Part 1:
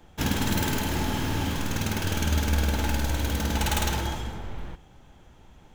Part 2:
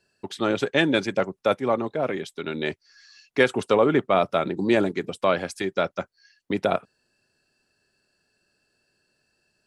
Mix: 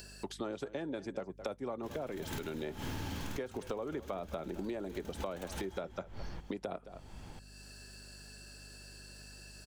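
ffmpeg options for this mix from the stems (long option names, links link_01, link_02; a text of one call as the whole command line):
ffmpeg -i stem1.wav -i stem2.wav -filter_complex "[0:a]adelay=1650,volume=-5dB[link_01];[1:a]bass=frequency=250:gain=-1,treble=frequency=4000:gain=9,acrossover=split=420|1200[link_02][link_03][link_04];[link_02]acompressor=threshold=-28dB:ratio=4[link_05];[link_03]acompressor=threshold=-26dB:ratio=4[link_06];[link_04]acompressor=threshold=-43dB:ratio=4[link_07];[link_05][link_06][link_07]amix=inputs=3:normalize=0,volume=-3.5dB,asplit=3[link_08][link_09][link_10];[link_09]volume=-19dB[link_11];[link_10]apad=whole_len=325936[link_12];[link_01][link_12]sidechaincompress=threshold=-45dB:ratio=12:attack=10:release=163[link_13];[link_11]aecho=0:1:215:1[link_14];[link_13][link_08][link_14]amix=inputs=3:normalize=0,acompressor=mode=upward:threshold=-39dB:ratio=2.5,aeval=exprs='val(0)+0.002*(sin(2*PI*50*n/s)+sin(2*PI*2*50*n/s)/2+sin(2*PI*3*50*n/s)/3+sin(2*PI*4*50*n/s)/4+sin(2*PI*5*50*n/s)/5)':channel_layout=same,acompressor=threshold=-36dB:ratio=6" out.wav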